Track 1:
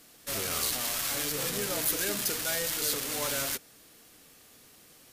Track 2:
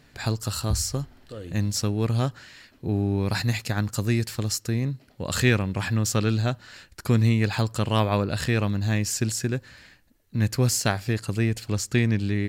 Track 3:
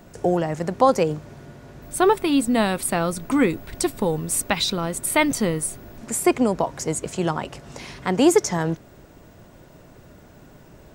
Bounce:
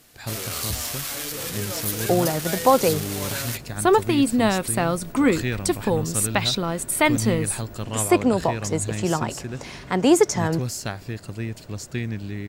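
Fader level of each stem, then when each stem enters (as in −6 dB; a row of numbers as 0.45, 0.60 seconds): +1.0, −6.5, 0.0 decibels; 0.00, 0.00, 1.85 seconds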